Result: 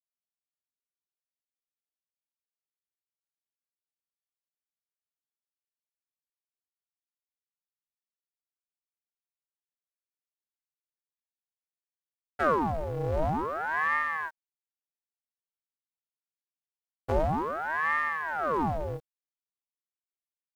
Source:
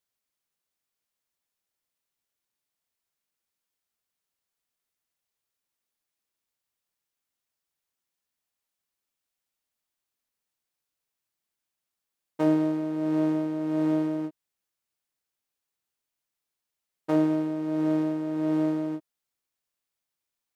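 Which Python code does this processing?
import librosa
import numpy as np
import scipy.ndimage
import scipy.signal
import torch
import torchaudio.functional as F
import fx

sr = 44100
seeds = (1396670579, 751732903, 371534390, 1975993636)

y = fx.quant_dither(x, sr, seeds[0], bits=10, dither='none')
y = fx.ring_lfo(y, sr, carrier_hz=840.0, swing_pct=80, hz=0.5)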